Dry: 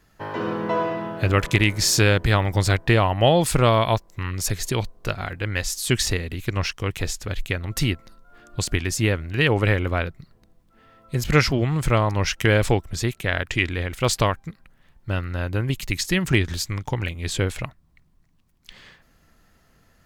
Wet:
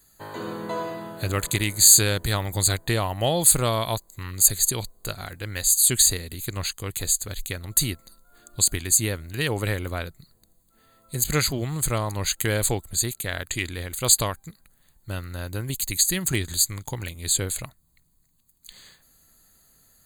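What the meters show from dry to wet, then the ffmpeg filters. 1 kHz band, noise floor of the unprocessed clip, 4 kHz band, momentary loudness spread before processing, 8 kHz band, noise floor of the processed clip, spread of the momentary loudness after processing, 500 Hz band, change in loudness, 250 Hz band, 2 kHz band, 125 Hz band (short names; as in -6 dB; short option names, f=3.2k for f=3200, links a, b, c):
-6.5 dB, -60 dBFS, +0.5 dB, 11 LU, +10.0 dB, -64 dBFS, 17 LU, -6.5 dB, +0.5 dB, -6.5 dB, -7.0 dB, -6.5 dB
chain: -af "asuperstop=centerf=5500:order=20:qfactor=3.6,aexciter=amount=6.1:drive=6.7:freq=4.1k,volume=-6.5dB"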